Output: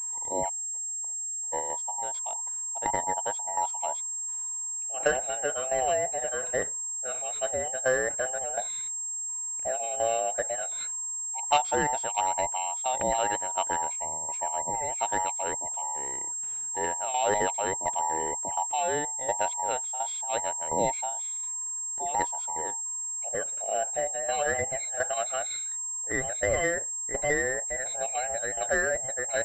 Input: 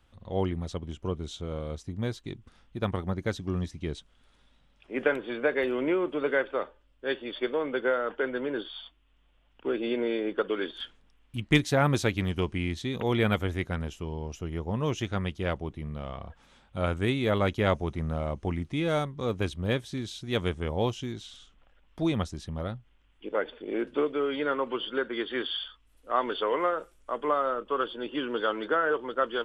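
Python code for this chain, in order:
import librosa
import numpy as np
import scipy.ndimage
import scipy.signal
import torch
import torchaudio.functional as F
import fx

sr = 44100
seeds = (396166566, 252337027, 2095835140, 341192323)

p1 = fx.band_invert(x, sr, width_hz=1000)
p2 = fx.level_steps(p1, sr, step_db=17)
p3 = p1 + (p2 * librosa.db_to_amplitude(0.0))
p4 = fx.gate_flip(p3, sr, shuts_db=-28.0, range_db=-35, at=(0.48, 1.52), fade=0.02)
p5 = fx.tremolo_shape(p4, sr, shape='saw_down', hz=1.4, depth_pct=75)
p6 = fx.pwm(p5, sr, carrier_hz=7500.0)
y = p6 * librosa.db_to_amplitude(-1.0)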